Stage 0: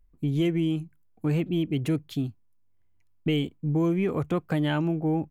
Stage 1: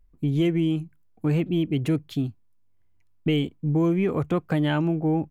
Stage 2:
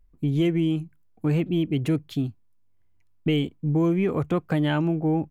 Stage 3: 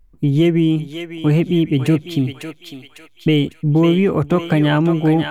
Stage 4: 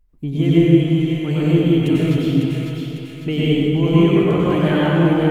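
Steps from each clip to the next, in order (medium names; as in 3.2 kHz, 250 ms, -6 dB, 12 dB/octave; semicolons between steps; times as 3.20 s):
treble shelf 4.9 kHz -4 dB; trim +2.5 dB
no audible change
thinning echo 551 ms, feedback 51%, high-pass 1.1 kHz, level -3.5 dB; trim +8 dB
reverberation RT60 2.7 s, pre-delay 88 ms, DRR -8 dB; trim -8.5 dB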